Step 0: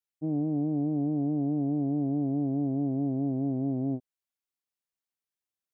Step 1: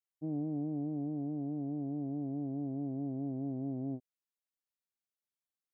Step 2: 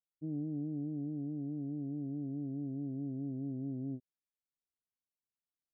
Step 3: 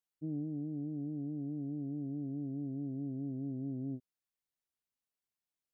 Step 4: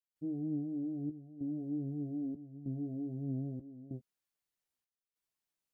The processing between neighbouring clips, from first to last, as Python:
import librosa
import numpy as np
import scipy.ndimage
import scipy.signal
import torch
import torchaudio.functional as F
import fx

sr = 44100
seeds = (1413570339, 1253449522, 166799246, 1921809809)

y1 = fx.rider(x, sr, range_db=10, speed_s=2.0)
y1 = y1 * librosa.db_to_amplitude(-8.5)
y2 = scipy.ndimage.gaussian_filter1d(y1, 17.0, mode='constant')
y3 = fx.rider(y2, sr, range_db=10, speed_s=0.5)
y4 = fx.step_gate(y3, sr, bpm=96, pattern='.xxxxxx.', floor_db=-12.0, edge_ms=4.5)
y4 = fx.chorus_voices(y4, sr, voices=4, hz=0.46, base_ms=13, depth_ms=3.8, mix_pct=35)
y4 = y4 * librosa.db_to_amplitude(4.5)